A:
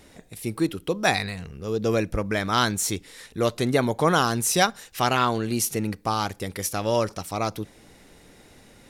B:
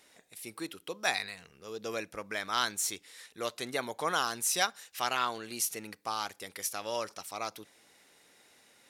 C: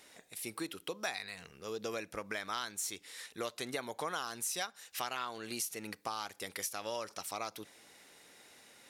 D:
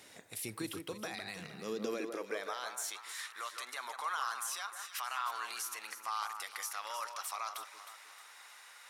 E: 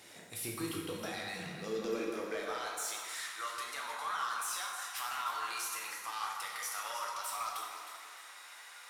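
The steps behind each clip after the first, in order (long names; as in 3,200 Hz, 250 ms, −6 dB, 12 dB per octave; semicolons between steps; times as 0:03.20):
high-pass filter 1,100 Hz 6 dB per octave; level −5.5 dB
downward compressor 4 to 1, threshold −39 dBFS, peak gain reduction 14.5 dB; level +3 dB
brickwall limiter −31.5 dBFS, peak gain reduction 11 dB; delay that swaps between a low-pass and a high-pass 156 ms, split 1,800 Hz, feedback 63%, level −6.5 dB; high-pass filter sweep 100 Hz → 1,100 Hz, 0:01.11–0:03.16; level +2 dB
soft clipping −33 dBFS, distortion −14 dB; dense smooth reverb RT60 1.3 s, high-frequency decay 0.8×, DRR −1 dB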